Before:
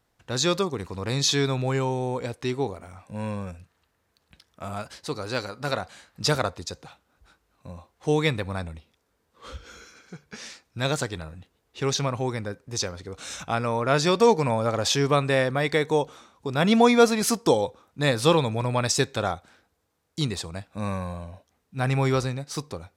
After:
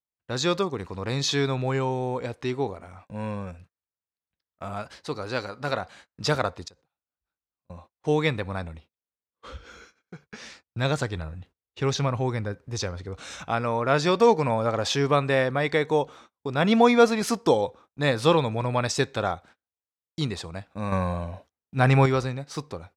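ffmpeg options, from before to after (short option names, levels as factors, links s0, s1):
-filter_complex "[0:a]asettb=1/sr,asplit=3[s0][s1][s2];[s0]atrim=end=6.684[s3];[s1]atrim=start=6.68:end=7.7,asetpts=PTS-STARTPTS,afade=t=in:d=0.004:c=qsin,afade=t=out:st=1.016:d=0.004:c=qsin,acompressor=threshold=0.00355:ratio=10:attack=3.2:release=140:knee=1:detection=peak[s4];[s2]atrim=start=7.696[s5];[s3][s4]acrossfade=d=0.004:c1=hsin:c2=qsin[s6];[s6][s5]acrossfade=d=0.004:c1=qsin:c2=hsin,asettb=1/sr,asplit=3[s7][s8][s9];[s7]atrim=end=10.414[s10];[s8]atrim=start=10.41:end=13.23,asetpts=PTS-STARTPTS,afade=t=in:d=0.004:c=qsin,afade=t=out:st=2.816:d=0.004:c=qsin,equalizer=f=76:t=o:w=1.9:g=7[s11];[s9]atrim=start=13.226[s12];[s10][s11]acrossfade=d=0.004:c1=hsin:c2=qsin[s13];[s13][s12]acrossfade=d=0.004:c1=qsin:c2=hsin,asettb=1/sr,asplit=3[s14][s15][s16];[s14]atrim=end=20.924[s17];[s15]atrim=start=20.92:end=22.06,asetpts=PTS-STARTPTS,afade=t=in:d=0.004:c=qsin,afade=t=out:st=1.136:d=0.004:c=qsin,acontrast=64[s18];[s16]atrim=start=22.056[s19];[s17][s18]acrossfade=d=0.004:c1=hsin:c2=qsin[s20];[s20][s19]acrossfade=d=0.004:c1=qsin:c2=hsin,agate=range=0.0251:threshold=0.00398:ratio=16:detection=peak,lowpass=f=2900:p=1,lowshelf=f=480:g=-3,volume=1.19"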